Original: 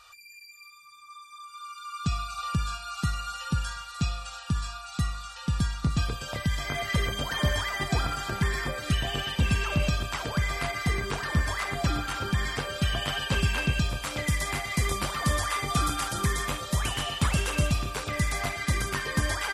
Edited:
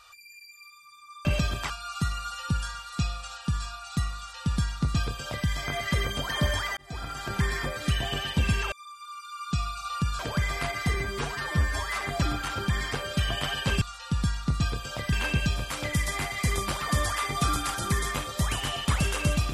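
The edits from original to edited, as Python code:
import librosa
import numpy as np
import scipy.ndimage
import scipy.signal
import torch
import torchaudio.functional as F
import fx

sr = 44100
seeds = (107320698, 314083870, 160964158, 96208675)

y = fx.edit(x, sr, fx.swap(start_s=1.25, length_s=1.47, other_s=9.74, other_length_s=0.45),
    fx.duplicate(start_s=5.18, length_s=1.31, to_s=13.46),
    fx.fade_in_span(start_s=7.79, length_s=0.61),
    fx.stretch_span(start_s=10.94, length_s=0.71, factor=1.5), tone=tone)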